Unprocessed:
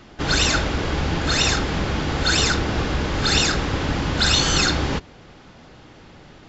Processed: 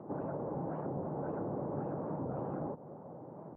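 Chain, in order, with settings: elliptic band-pass 130–970 Hz, stop band 60 dB; bell 580 Hz +7.5 dB 0.56 oct; limiter -17.5 dBFS, peak gain reduction 6.5 dB; compressor 5:1, threshold -34 dBFS, peak gain reduction 11 dB; plain phase-vocoder stretch 0.55×; air absorption 430 m; record warp 45 rpm, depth 160 cents; gain +2 dB

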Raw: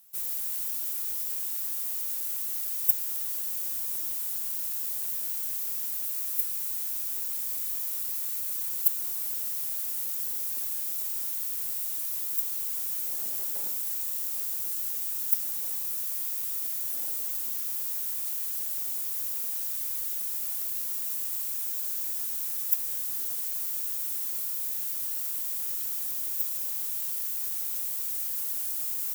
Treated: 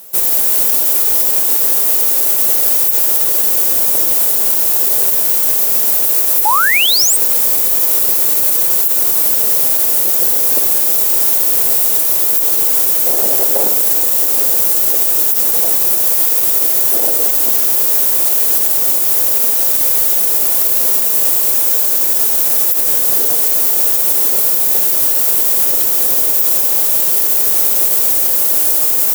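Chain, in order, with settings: bell 500 Hz +13.5 dB 1.8 oct; painted sound rise, 6.45–7.17, 800–9000 Hz -30 dBFS; maximiser +22 dB; gain -1 dB

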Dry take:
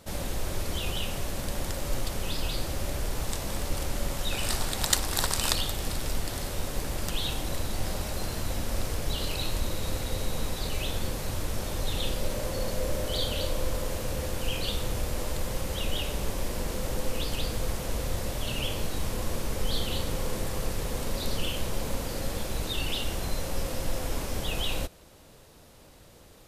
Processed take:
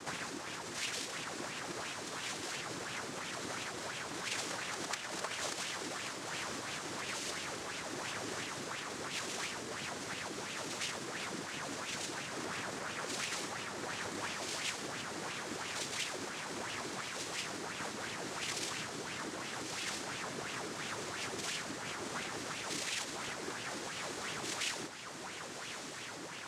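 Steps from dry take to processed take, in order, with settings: band shelf 1900 Hz +11.5 dB; compressor 4:1, threshold -42 dBFS, peak gain reduction 23.5 dB; noise vocoder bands 3; on a send: diffused feedback echo 1.21 s, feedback 57%, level -8 dB; on the sum: LFO bell 2.9 Hz 290–2900 Hz +9 dB; gain +1.5 dB

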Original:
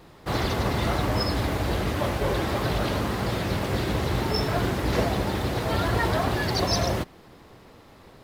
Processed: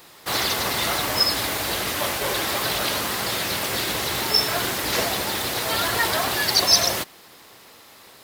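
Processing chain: tilt +4 dB/oct; gain +2.5 dB

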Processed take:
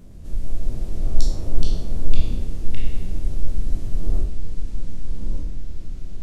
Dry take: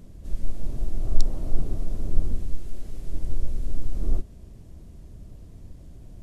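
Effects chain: spectral trails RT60 0.59 s; echoes that change speed 0.111 s, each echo -4 st, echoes 3

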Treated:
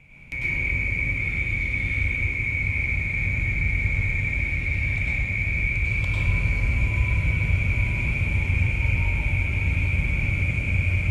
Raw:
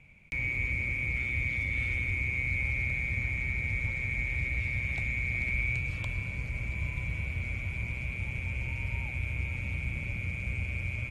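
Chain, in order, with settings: vocal rider 0.5 s; reverb RT60 1.2 s, pre-delay 93 ms, DRR -5.5 dB; gain +1 dB

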